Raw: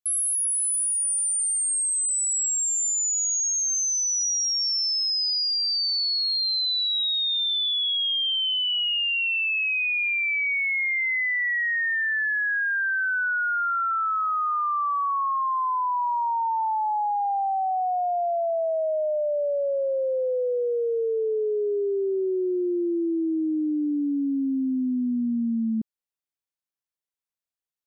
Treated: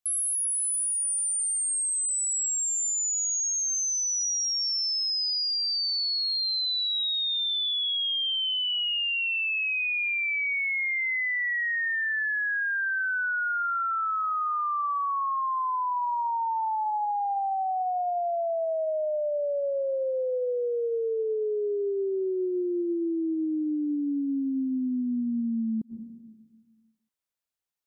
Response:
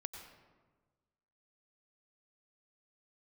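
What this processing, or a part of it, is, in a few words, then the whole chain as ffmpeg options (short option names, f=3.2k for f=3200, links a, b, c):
ducked reverb: -filter_complex "[0:a]asplit=3[a][b][c];[1:a]atrim=start_sample=2205[d];[b][d]afir=irnorm=-1:irlink=0[e];[c]apad=whole_len=1228761[f];[e][f]sidechaincompress=threshold=-44dB:ratio=8:attack=43:release=105,volume=3.5dB[g];[a][g]amix=inputs=2:normalize=0,volume=-4dB"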